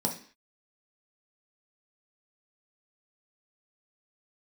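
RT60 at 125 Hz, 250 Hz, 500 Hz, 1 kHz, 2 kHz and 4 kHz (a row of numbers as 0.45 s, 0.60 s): 0.35 s, 0.45 s, 0.45 s, 0.45 s, 0.55 s, no reading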